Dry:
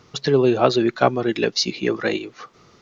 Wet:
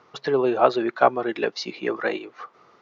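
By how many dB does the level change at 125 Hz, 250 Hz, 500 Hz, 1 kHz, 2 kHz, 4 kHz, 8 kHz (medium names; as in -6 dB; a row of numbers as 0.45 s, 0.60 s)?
-14.0 dB, -6.5 dB, -2.5 dB, +1.0 dB, -2.0 dB, -10.0 dB, no reading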